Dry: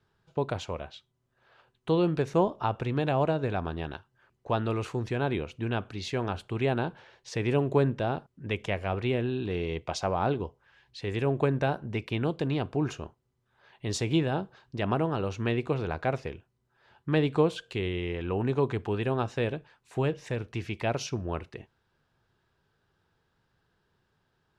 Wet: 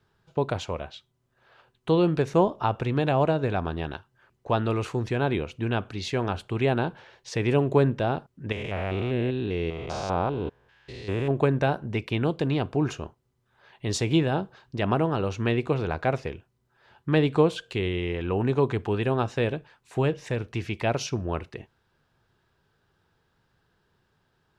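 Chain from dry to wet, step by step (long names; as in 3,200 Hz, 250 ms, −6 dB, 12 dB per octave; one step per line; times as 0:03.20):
0:08.52–0:11.31: spectrum averaged block by block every 200 ms
level +3.5 dB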